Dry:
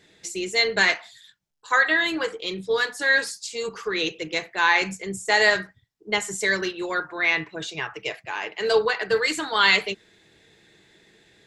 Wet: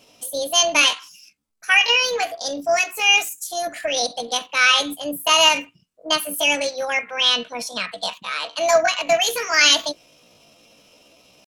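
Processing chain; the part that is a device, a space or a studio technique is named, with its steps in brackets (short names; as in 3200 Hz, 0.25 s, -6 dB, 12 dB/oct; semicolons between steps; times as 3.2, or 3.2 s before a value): chipmunk voice (pitch shift +7 st); gain +4 dB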